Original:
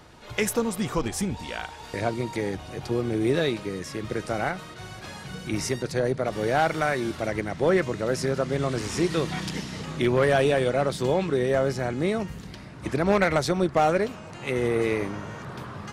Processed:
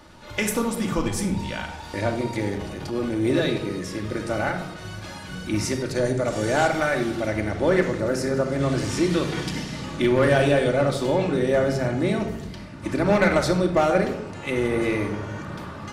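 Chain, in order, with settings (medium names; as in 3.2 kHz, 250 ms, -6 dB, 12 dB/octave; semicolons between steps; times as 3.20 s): 5.95–6.68 s: peaking EQ 7.4 kHz +13.5 dB 0.59 oct; simulated room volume 2600 m³, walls furnished, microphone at 2.5 m; 2.53–3.28 s: transient shaper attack -7 dB, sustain +4 dB; 8.00–8.61 s: peaking EQ 3.3 kHz -6.5 dB 0.78 oct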